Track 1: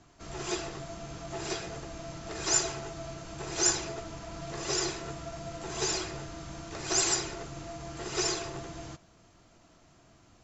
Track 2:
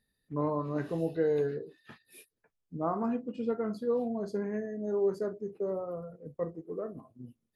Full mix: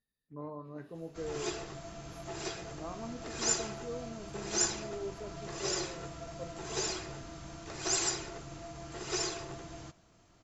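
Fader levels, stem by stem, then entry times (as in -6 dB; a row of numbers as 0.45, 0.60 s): -4.0, -12.0 dB; 0.95, 0.00 s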